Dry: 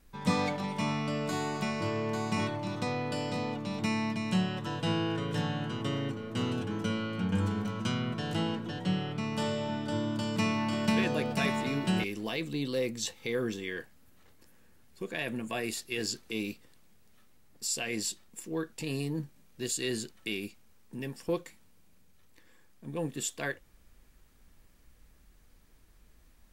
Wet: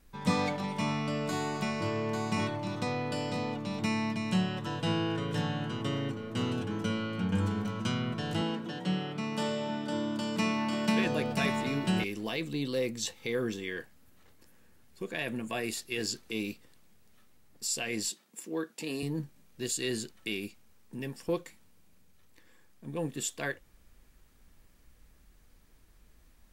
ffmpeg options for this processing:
ffmpeg -i in.wav -filter_complex "[0:a]asettb=1/sr,asplit=3[link_01][link_02][link_03];[link_01]atrim=end=8.414[link_04];[link_02]atrim=start=8.41:end=11.06,asetpts=PTS-STARTPTS,afade=type=in:duration=0.004:curve=qsin,afade=type=out:start_time=2.646:duration=0.004:curve=qsin,highpass=frequency=150:width=0.5412,highpass=frequency=150:width=1.3066[link_05];[link_03]atrim=start=11.056[link_06];[link_04][link_05]acrossfade=duration=0.004:curve1=hsin:curve2=qsin[link_07];[link_07][link_06]acrossfade=duration=0.004:curve1=qsin:curve2=hsin,asettb=1/sr,asplit=3[link_08][link_09][link_10];[link_08]atrim=end=18.094[link_11];[link_09]atrim=start=18.09:end=19.03,asetpts=PTS-STARTPTS,afade=type=in:duration=0.004:curve=qsin,afade=type=out:start_time=0.936:duration=0.004:curve=qsin,highpass=frequency=190:width=0.5412,highpass=frequency=190:width=1.3066[link_12];[link_10]atrim=start=19.026[link_13];[link_11][link_12]acrossfade=duration=0.004:curve1=hsin:curve2=qsin[link_14];[link_14][link_13]acrossfade=duration=0.004:curve1=qsin:curve2=hsin" out.wav

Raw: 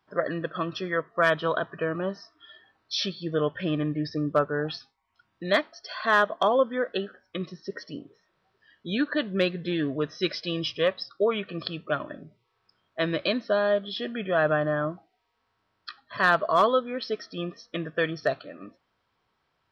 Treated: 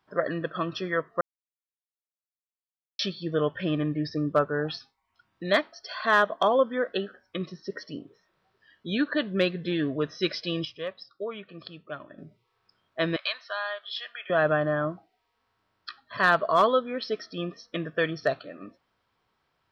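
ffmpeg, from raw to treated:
ffmpeg -i in.wav -filter_complex "[0:a]asettb=1/sr,asplit=3[link_01][link_02][link_03];[link_01]atrim=end=13.164[link_04];[link_02]atrim=start=13.16:end=14.3,asetpts=PTS-STARTPTS,afade=type=in:duration=0.004:curve=qsin,afade=type=out:start_time=1.136:duration=0.004:curve=qsin,highpass=frequency=910:width=0.5412,highpass=frequency=910:width=1.3066[link_05];[link_03]atrim=start=14.296[link_06];[link_04][link_05]acrossfade=duration=0.004:curve1=hsin:curve2=qsin[link_07];[link_07][link_06]acrossfade=duration=0.004:curve1=qsin:curve2=hsin,asplit=5[link_08][link_09][link_10][link_11][link_12];[link_08]atrim=end=1.21,asetpts=PTS-STARTPTS,afade=type=out:start_time=1.206:duration=0.004:curve=hsin[link_13];[link_09]atrim=start=1.21:end=2.99,asetpts=PTS-STARTPTS,volume=0[link_14];[link_10]atrim=start=2.99:end=10.652,asetpts=PTS-STARTPTS,afade=type=in:duration=0.004:curve=hsin[link_15];[link_11]atrim=start=10.648:end=12.182,asetpts=PTS-STARTPTS,volume=-10dB[link_16];[link_12]atrim=start=12.178[link_17];[link_13][link_14][link_15]concat=n=3:v=0:a=1[link_18];[link_18][link_16]acrossfade=duration=0.004:curve1=hsin:curve2=hsin[link_19];[link_19][link_17]acrossfade=duration=0.004:curve1=hsin:curve2=hsin" out.wav

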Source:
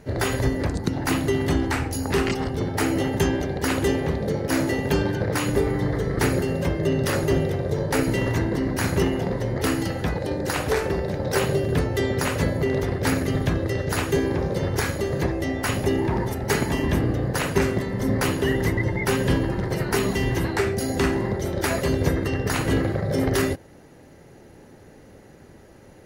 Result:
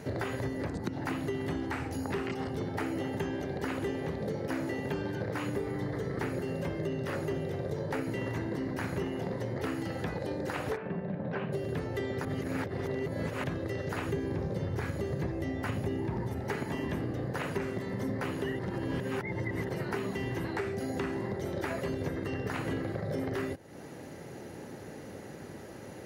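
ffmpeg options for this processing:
ffmpeg -i in.wav -filter_complex "[0:a]asplit=3[link_01][link_02][link_03];[link_01]afade=type=out:start_time=10.75:duration=0.02[link_04];[link_02]highpass=150,equalizer=frequency=180:width_type=q:width=4:gain=8,equalizer=frequency=350:width_type=q:width=4:gain=-9,equalizer=frequency=500:width_type=q:width=4:gain=-7,equalizer=frequency=840:width_type=q:width=4:gain=-6,equalizer=frequency=1300:width_type=q:width=4:gain=-6,equalizer=frequency=2000:width_type=q:width=4:gain=-8,lowpass=frequency=2300:width=0.5412,lowpass=frequency=2300:width=1.3066,afade=type=in:start_time=10.75:duration=0.02,afade=type=out:start_time=11.52:duration=0.02[link_05];[link_03]afade=type=in:start_time=11.52:duration=0.02[link_06];[link_04][link_05][link_06]amix=inputs=3:normalize=0,asettb=1/sr,asplit=3[link_07][link_08][link_09];[link_07]atrim=end=14.054[link_10];[link_08]atrim=start=14.05:end=16.41,asetpts=PTS-STARTPTS,afade=type=in:duration=0.004:curve=qsin,afade=type=out:start_time=2.356:duration=0.004:curve=qsin,lowshelf=frequency=190:gain=10[link_11];[link_09]atrim=start=16.406[link_12];[link_10][link_11]acrossfade=duration=0.004:curve1=hsin:curve2=qsin[link_13];[link_13][link_12]acrossfade=duration=0.004:curve1=qsin:curve2=hsin,asplit=5[link_14][link_15][link_16][link_17][link_18];[link_14]atrim=end=12.252[link_19];[link_15]atrim=start=12.248:end=13.442,asetpts=PTS-STARTPTS,areverse[link_20];[link_16]atrim=start=13.438:end=18.592[link_21];[link_17]atrim=start=18.588:end=19.692,asetpts=PTS-STARTPTS,areverse[link_22];[link_18]atrim=start=19.688[link_23];[link_19][link_20]acrossfade=duration=0.004:curve1=hsin:curve2=hsin[link_24];[link_24][link_21]acrossfade=duration=0.004:curve1=hsin:curve2=hsin[link_25];[link_25][link_22]acrossfade=duration=0.004:curve1=hsin:curve2=hsin[link_26];[link_26][link_23]acrossfade=duration=0.004:curve1=hsin:curve2=hsin,acrossover=split=3000[link_27][link_28];[link_28]acompressor=threshold=-43dB:ratio=4:attack=1:release=60[link_29];[link_27][link_29]amix=inputs=2:normalize=0,highpass=100,acompressor=threshold=-38dB:ratio=4,volume=4dB" out.wav

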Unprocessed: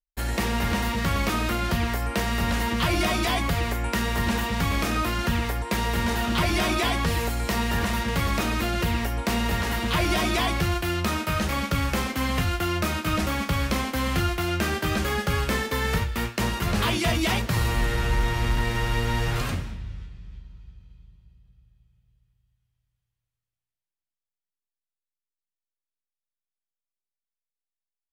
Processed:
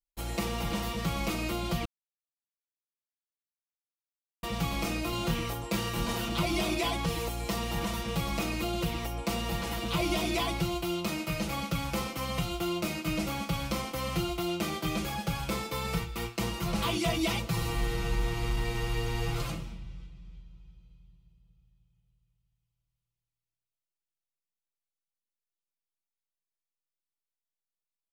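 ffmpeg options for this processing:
ffmpeg -i in.wav -filter_complex "[0:a]asettb=1/sr,asplit=3[link_01][link_02][link_03];[link_01]atrim=end=5.104[link_04];[link_02]atrim=start=5.1:end=6.28,asetpts=PTS-STARTPTS,afade=type=in:duration=0.004:curve=qsin,afade=type=out:start_time=1.176:duration=0.004:curve=qsin,asplit=2[link_05][link_06];[link_06]adelay=25,volume=-3dB[link_07];[link_05][link_07]amix=inputs=2:normalize=0,atrim=end_sample=52038[link_08];[link_03]atrim=start=6.276[link_09];[link_04][link_08]acrossfade=duration=0.004:curve1=hsin:curve2=qsin[link_10];[link_10][link_09]acrossfade=duration=0.004:curve1=qsin:curve2=hsin,asplit=3[link_11][link_12][link_13];[link_11]atrim=end=1.85,asetpts=PTS-STARTPTS,afade=type=out:start_time=1.846:duration=0.004:curve=hsin[link_14];[link_12]atrim=start=1.85:end=4.43,asetpts=PTS-STARTPTS,volume=0[link_15];[link_13]atrim=start=4.43,asetpts=PTS-STARTPTS,afade=type=in:duration=0.004:curve=hsin[link_16];[link_14][link_15][link_16]concat=n=3:v=0:a=1,equalizer=frequency=1700:width_type=o:width=0.29:gain=-12.5,aecho=1:1:6:0.95,volume=-8dB" out.wav

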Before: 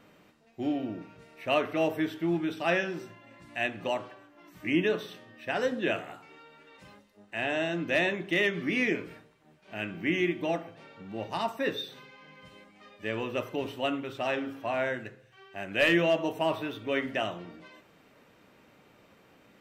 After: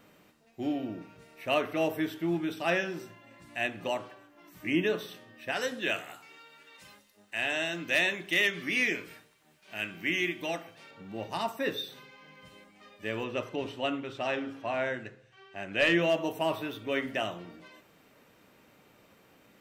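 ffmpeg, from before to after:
ffmpeg -i in.wav -filter_complex "[0:a]asettb=1/sr,asplit=3[link_01][link_02][link_03];[link_01]atrim=end=5.524[link_04];[link_02]atrim=start=5.52:end=10.91,asetpts=PTS-STARTPTS,afade=type=in:duration=0.004:curve=qsin,afade=type=out:start_time=5.386:duration=0.004:curve=qsin,tiltshelf=frequency=1200:gain=-5.5[link_05];[link_03]atrim=start=10.906[link_06];[link_04][link_05]acrossfade=duration=0.004:curve1=hsin:curve2=qsin[link_07];[link_07][link_06]acrossfade=duration=0.004:curve1=qsin:curve2=hsin,asettb=1/sr,asplit=3[link_08][link_09][link_10];[link_08]atrim=end=13.244[link_11];[link_09]atrim=start=13.24:end=16.02,asetpts=PTS-STARTPTS,afade=type=in:duration=0.004:curve=qsin,afade=type=out:start_time=2.776:duration=0.004:curve=qsin,lowpass=6500[link_12];[link_10]atrim=start=16.016[link_13];[link_11][link_12]acrossfade=duration=0.004:curve1=hsin:curve2=qsin[link_14];[link_14][link_13]acrossfade=duration=0.004:curve1=qsin:curve2=hsin,highshelf=frequency=7400:gain=9.5,volume=-1.5dB" out.wav

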